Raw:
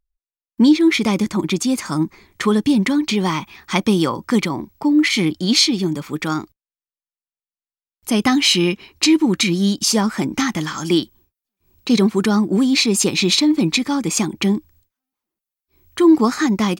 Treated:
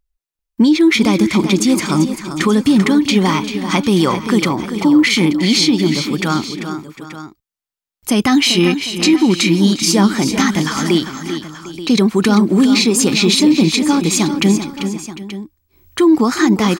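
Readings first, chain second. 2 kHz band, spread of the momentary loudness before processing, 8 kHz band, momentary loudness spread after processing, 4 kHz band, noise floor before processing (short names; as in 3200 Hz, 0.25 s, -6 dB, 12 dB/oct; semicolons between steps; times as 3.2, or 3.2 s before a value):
+4.0 dB, 9 LU, +3.0 dB, 14 LU, +2.5 dB, under -85 dBFS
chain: limiter -9.5 dBFS, peak gain reduction 7.5 dB; tapped delay 0.355/0.391/0.751/0.88 s -19/-9.5/-18/-14.5 dB; gain +5 dB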